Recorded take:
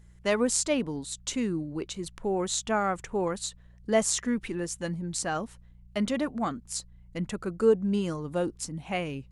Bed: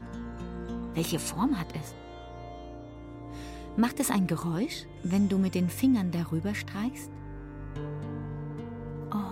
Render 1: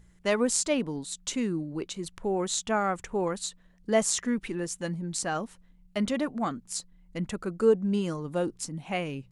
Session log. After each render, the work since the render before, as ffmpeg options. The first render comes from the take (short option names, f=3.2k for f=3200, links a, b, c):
-af "bandreject=f=60:t=h:w=4,bandreject=f=120:t=h:w=4"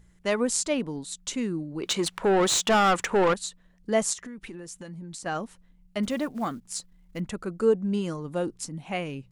-filter_complex "[0:a]asettb=1/sr,asplit=3[a][b][c];[a]atrim=end=1.834[d];[b]atrim=start=1.83:end=3.34,asetpts=PTS-STARTPTS,afade=t=in:d=0.004:c=qsin,afade=t=out:st=1.506:d=0.004:c=qsin,asplit=2[e][f];[f]highpass=f=720:p=1,volume=24dB,asoftclip=type=tanh:threshold=-13dB[g];[e][g]amix=inputs=2:normalize=0,lowpass=f=4.7k:p=1,volume=-6dB[h];[c]atrim=start=3.336[i];[d][h]acrossfade=d=0.004:c1=hsin:c2=qsin[j];[j][i]acrossfade=d=0.004:c1=qsin:c2=hsin,asettb=1/sr,asplit=3[k][l][m];[k]atrim=end=4.134[n];[l]atrim=start=4.13:end=5.26,asetpts=PTS-STARTPTS,afade=t=in:d=0.004:c=qsin,afade=t=out:st=1.126:d=0.004:c=qsin,acompressor=threshold=-36dB:ratio=16:attack=3.2:release=140:knee=1:detection=peak[o];[m]atrim=start=5.256[p];[n][o]acrossfade=d=0.004:c1=hsin:c2=qsin[q];[q][p]acrossfade=d=0.004:c1=qsin:c2=hsin,asettb=1/sr,asplit=3[r][s][t];[r]atrim=end=6.034[u];[s]atrim=start=6.03:end=7.2,asetpts=PTS-STARTPTS,afade=t=in:d=0.004:c=qsin,afade=t=out:st=1.166:d=0.004:c=qsin,acrusher=bits=7:mode=log:mix=0:aa=0.000001[v];[t]atrim=start=7.196[w];[u][v]acrossfade=d=0.004:c1=hsin:c2=qsin[x];[x][w]acrossfade=d=0.004:c1=qsin:c2=hsin"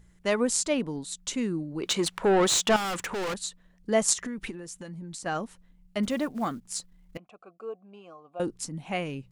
-filter_complex "[0:a]asettb=1/sr,asplit=3[a][b][c];[a]atrim=end=2.764[d];[b]atrim=start=2.76:end=3.43,asetpts=PTS-STARTPTS,afade=t=in:d=0.004:c=qsin,afade=t=out:st=0.666:d=0.004:c=qsin,asoftclip=type=hard:threshold=-29.5dB[e];[c]atrim=start=3.426[f];[d][e]acrossfade=d=0.004:c1=hsin:c2=qsin[g];[g][f]acrossfade=d=0.004:c1=qsin:c2=hsin,asettb=1/sr,asplit=3[h][i][j];[h]atrim=end=4.084[k];[i]atrim=start=4.08:end=4.51,asetpts=PTS-STARTPTS,afade=t=in:d=0.004:c=qsin,afade=t=out:st=0.426:d=0.004:c=qsin,acontrast=34[l];[j]atrim=start=4.506[m];[k][l]acrossfade=d=0.004:c1=hsin:c2=qsin[n];[n][m]acrossfade=d=0.004:c1=qsin:c2=hsin,asettb=1/sr,asplit=3[o][p][q];[o]atrim=end=7.174[r];[p]atrim=start=7.17:end=8.4,asetpts=PTS-STARTPTS,afade=t=in:d=0.004:c=qsin,afade=t=out:st=1.226:d=0.004:c=qsin,asplit=3[s][t][u];[s]bandpass=f=730:t=q:w=8,volume=0dB[v];[t]bandpass=f=1.09k:t=q:w=8,volume=-6dB[w];[u]bandpass=f=2.44k:t=q:w=8,volume=-9dB[x];[v][w][x]amix=inputs=3:normalize=0[y];[q]atrim=start=8.396[z];[r][y]acrossfade=d=0.004:c1=hsin:c2=qsin[aa];[aa][z]acrossfade=d=0.004:c1=qsin:c2=hsin"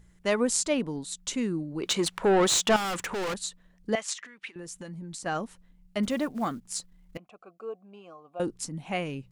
-filter_complex "[0:a]asettb=1/sr,asplit=3[a][b][c];[a]atrim=end=3.954[d];[b]atrim=start=3.95:end=4.56,asetpts=PTS-STARTPTS,afade=t=in:d=0.004:c=qsin,afade=t=out:st=0.606:d=0.004:c=qsin,bandpass=f=2.5k:t=q:w=1.1[e];[c]atrim=start=4.556[f];[d][e]acrossfade=d=0.004:c1=hsin:c2=qsin[g];[g][f]acrossfade=d=0.004:c1=qsin:c2=hsin"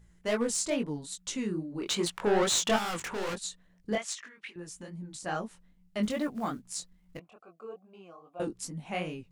-af "asoftclip=type=hard:threshold=-19dB,flanger=delay=17:depth=6.8:speed=2.4"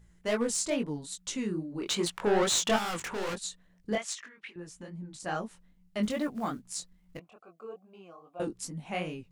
-filter_complex "[0:a]asettb=1/sr,asplit=3[a][b][c];[a]atrim=end=4.264[d];[b]atrim=start=4.26:end=5.2,asetpts=PTS-STARTPTS,afade=t=in:d=0.004:c=qsin,afade=t=out:st=0.936:d=0.004:c=qsin,highshelf=f=5.1k:g=-8[e];[c]atrim=start=5.196[f];[d][e]acrossfade=d=0.004:c1=hsin:c2=qsin[g];[g][f]acrossfade=d=0.004:c1=qsin:c2=hsin"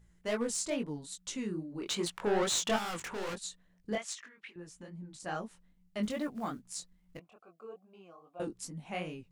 -af "volume=-4dB"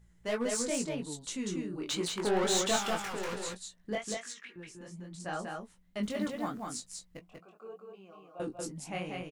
-filter_complex "[0:a]asplit=2[a][b];[b]adelay=16,volume=-11.5dB[c];[a][c]amix=inputs=2:normalize=0,asplit=2[d][e];[e]aecho=0:1:191:0.668[f];[d][f]amix=inputs=2:normalize=0"